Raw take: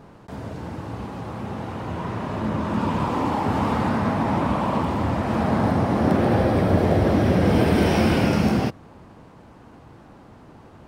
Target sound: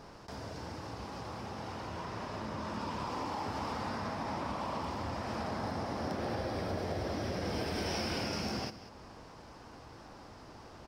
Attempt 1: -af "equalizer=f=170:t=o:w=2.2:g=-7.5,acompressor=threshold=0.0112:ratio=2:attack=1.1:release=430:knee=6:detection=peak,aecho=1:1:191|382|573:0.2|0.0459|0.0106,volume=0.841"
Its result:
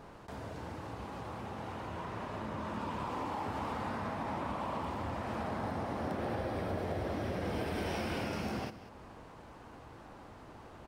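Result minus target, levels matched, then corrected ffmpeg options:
4 kHz band -5.5 dB
-af "equalizer=f=170:t=o:w=2.2:g=-7.5,acompressor=threshold=0.0112:ratio=2:attack=1.1:release=430:knee=6:detection=peak,equalizer=f=5200:t=o:w=0.54:g=13,aecho=1:1:191|382|573:0.2|0.0459|0.0106,volume=0.841"

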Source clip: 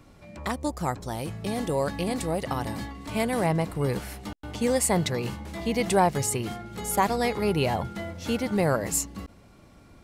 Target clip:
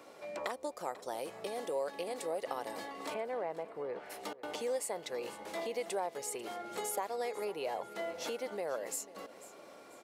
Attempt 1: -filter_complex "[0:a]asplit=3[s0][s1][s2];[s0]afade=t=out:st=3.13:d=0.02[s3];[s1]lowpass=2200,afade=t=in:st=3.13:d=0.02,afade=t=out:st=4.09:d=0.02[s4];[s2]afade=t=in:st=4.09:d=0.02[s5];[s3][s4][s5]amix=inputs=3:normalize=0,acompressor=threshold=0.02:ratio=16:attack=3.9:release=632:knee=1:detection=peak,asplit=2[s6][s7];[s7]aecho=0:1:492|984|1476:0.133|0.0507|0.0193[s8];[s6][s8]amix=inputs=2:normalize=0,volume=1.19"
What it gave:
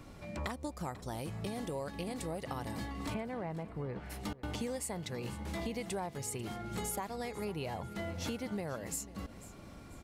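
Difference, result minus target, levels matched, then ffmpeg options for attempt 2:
500 Hz band -4.0 dB
-filter_complex "[0:a]asplit=3[s0][s1][s2];[s0]afade=t=out:st=3.13:d=0.02[s3];[s1]lowpass=2200,afade=t=in:st=3.13:d=0.02,afade=t=out:st=4.09:d=0.02[s4];[s2]afade=t=in:st=4.09:d=0.02[s5];[s3][s4][s5]amix=inputs=3:normalize=0,acompressor=threshold=0.02:ratio=16:attack=3.9:release=632:knee=1:detection=peak,highpass=f=490:t=q:w=1.9,asplit=2[s6][s7];[s7]aecho=0:1:492|984|1476:0.133|0.0507|0.0193[s8];[s6][s8]amix=inputs=2:normalize=0,volume=1.19"

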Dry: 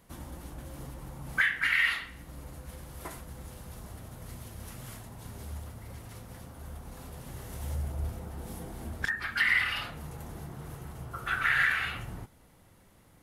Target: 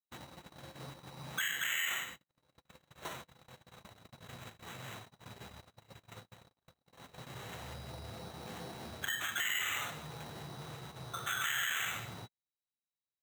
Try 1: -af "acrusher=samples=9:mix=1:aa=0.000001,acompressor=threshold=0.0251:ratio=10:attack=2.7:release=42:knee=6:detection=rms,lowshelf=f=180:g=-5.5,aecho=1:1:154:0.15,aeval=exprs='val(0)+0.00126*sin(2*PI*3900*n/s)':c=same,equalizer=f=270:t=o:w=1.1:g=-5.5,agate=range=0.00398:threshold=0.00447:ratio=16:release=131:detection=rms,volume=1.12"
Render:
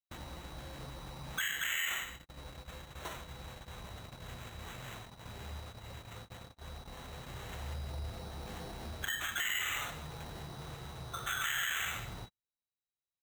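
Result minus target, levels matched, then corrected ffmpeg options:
125 Hz band +5.5 dB
-af "acrusher=samples=9:mix=1:aa=0.000001,acompressor=threshold=0.0251:ratio=10:attack=2.7:release=42:knee=6:detection=rms,highpass=f=100:w=0.5412,highpass=f=100:w=1.3066,lowshelf=f=180:g=-5.5,aecho=1:1:154:0.15,aeval=exprs='val(0)+0.00126*sin(2*PI*3900*n/s)':c=same,equalizer=f=270:t=o:w=1.1:g=-5.5,agate=range=0.00398:threshold=0.00447:ratio=16:release=131:detection=rms,volume=1.12"

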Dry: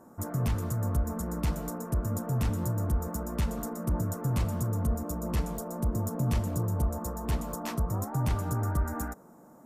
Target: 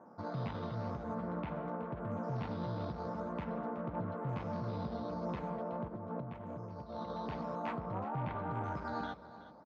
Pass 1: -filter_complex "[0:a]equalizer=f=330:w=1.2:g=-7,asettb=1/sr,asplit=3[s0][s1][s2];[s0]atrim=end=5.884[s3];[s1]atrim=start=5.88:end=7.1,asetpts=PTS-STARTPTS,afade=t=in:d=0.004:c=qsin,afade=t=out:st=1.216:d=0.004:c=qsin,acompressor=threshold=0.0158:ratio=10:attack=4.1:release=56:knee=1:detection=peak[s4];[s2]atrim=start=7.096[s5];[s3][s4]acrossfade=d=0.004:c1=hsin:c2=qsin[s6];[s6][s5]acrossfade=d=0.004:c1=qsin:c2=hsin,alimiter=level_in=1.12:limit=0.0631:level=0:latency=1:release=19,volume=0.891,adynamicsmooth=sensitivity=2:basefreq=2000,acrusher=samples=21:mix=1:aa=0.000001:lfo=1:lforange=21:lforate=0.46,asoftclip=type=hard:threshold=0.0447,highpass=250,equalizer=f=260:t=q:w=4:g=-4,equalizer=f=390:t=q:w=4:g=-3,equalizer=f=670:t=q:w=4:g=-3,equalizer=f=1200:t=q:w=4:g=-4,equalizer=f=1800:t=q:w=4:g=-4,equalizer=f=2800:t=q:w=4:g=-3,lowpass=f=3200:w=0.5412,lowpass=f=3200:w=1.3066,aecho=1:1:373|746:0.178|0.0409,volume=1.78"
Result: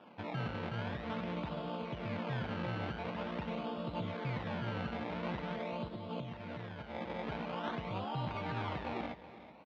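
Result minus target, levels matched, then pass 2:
decimation with a swept rate: distortion +10 dB
-filter_complex "[0:a]equalizer=f=330:w=1.2:g=-7,asettb=1/sr,asplit=3[s0][s1][s2];[s0]atrim=end=5.884[s3];[s1]atrim=start=5.88:end=7.1,asetpts=PTS-STARTPTS,afade=t=in:d=0.004:c=qsin,afade=t=out:st=1.216:d=0.004:c=qsin,acompressor=threshold=0.0158:ratio=10:attack=4.1:release=56:knee=1:detection=peak[s4];[s2]atrim=start=7.096[s5];[s3][s4]acrossfade=d=0.004:c1=hsin:c2=qsin[s6];[s6][s5]acrossfade=d=0.004:c1=qsin:c2=hsin,alimiter=level_in=1.12:limit=0.0631:level=0:latency=1:release=19,volume=0.891,adynamicsmooth=sensitivity=2:basefreq=2000,acrusher=samples=6:mix=1:aa=0.000001:lfo=1:lforange=6:lforate=0.46,asoftclip=type=hard:threshold=0.0447,highpass=250,equalizer=f=260:t=q:w=4:g=-4,equalizer=f=390:t=q:w=4:g=-3,equalizer=f=670:t=q:w=4:g=-3,equalizer=f=1200:t=q:w=4:g=-4,equalizer=f=1800:t=q:w=4:g=-4,equalizer=f=2800:t=q:w=4:g=-3,lowpass=f=3200:w=0.5412,lowpass=f=3200:w=1.3066,aecho=1:1:373|746:0.178|0.0409,volume=1.78"

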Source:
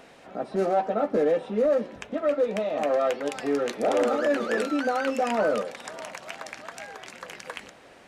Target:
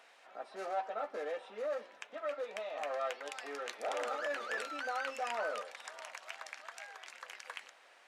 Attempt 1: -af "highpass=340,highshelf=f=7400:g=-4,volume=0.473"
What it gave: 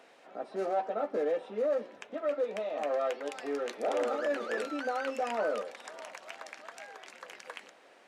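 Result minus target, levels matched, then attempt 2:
250 Hz band +7.5 dB
-af "highpass=880,highshelf=f=7400:g=-4,volume=0.473"

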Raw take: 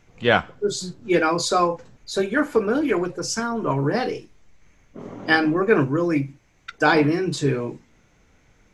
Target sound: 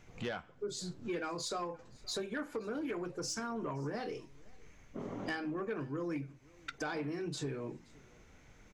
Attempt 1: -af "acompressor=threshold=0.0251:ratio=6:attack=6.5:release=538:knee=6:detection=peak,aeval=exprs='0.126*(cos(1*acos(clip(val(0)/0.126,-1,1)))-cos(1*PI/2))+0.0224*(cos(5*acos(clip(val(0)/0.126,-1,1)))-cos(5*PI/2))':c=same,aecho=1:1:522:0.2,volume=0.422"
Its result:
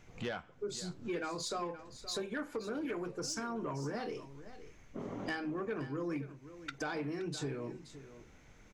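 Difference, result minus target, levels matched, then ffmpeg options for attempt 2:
echo-to-direct +11 dB
-af "acompressor=threshold=0.0251:ratio=6:attack=6.5:release=538:knee=6:detection=peak,aeval=exprs='0.126*(cos(1*acos(clip(val(0)/0.126,-1,1)))-cos(1*PI/2))+0.0224*(cos(5*acos(clip(val(0)/0.126,-1,1)))-cos(5*PI/2))':c=same,aecho=1:1:522:0.0562,volume=0.422"

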